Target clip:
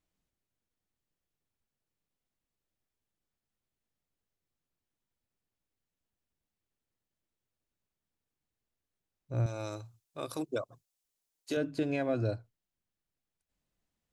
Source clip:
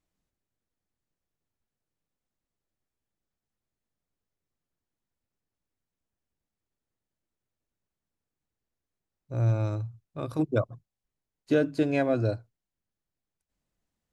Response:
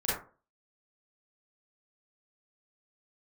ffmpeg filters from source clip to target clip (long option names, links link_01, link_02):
-filter_complex "[0:a]equalizer=frequency=3000:width=1.5:gain=2.5,alimiter=limit=-19.5dB:level=0:latency=1:release=190,asettb=1/sr,asplit=3[link_01][link_02][link_03];[link_01]atrim=end=9.464[link_04];[link_02]atrim=start=9.46:end=11.57,asetpts=PTS-STARTPTS,afade=type=in:duration=0.004:curve=qsin,afade=type=out:start_time=2.106:duration=0.004:curve=qsin,bass=frequency=250:gain=-13,treble=frequency=4000:gain=12[link_05];[link_03]atrim=start=11.566[link_06];[link_04][link_05]acrossfade=duration=0.004:curve1=hsin:curve2=qsin[link_07];[link_07][link_06]acrossfade=duration=0.004:curve1=qsin:curve2=hsin,volume=-2dB"